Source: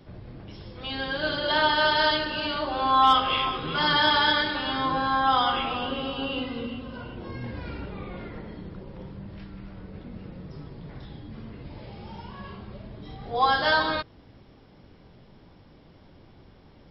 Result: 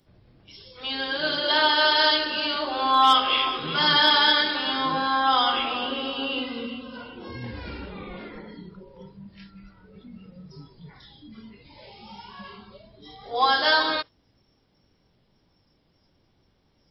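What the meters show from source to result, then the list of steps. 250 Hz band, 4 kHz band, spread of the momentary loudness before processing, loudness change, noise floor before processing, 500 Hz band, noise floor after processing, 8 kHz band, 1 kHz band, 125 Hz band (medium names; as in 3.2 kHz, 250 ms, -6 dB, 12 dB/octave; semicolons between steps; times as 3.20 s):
-0.5 dB, +5.0 dB, 22 LU, +3.0 dB, -53 dBFS, 0.0 dB, -66 dBFS, no reading, +0.5 dB, -5.5 dB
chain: spectral noise reduction 14 dB; treble shelf 3.8 kHz +11 dB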